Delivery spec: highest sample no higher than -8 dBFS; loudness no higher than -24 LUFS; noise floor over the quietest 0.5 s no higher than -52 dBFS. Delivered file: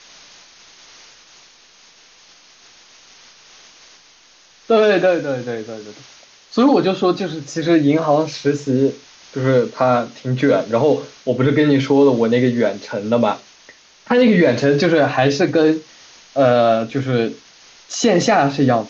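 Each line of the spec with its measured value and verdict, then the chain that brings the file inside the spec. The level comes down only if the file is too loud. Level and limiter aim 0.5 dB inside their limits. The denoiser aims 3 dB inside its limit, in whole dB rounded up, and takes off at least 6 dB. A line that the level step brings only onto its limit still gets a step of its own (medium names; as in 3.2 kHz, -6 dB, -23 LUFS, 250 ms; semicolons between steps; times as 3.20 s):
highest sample -4.5 dBFS: fail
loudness -16.5 LUFS: fail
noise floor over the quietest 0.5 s -50 dBFS: fail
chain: trim -8 dB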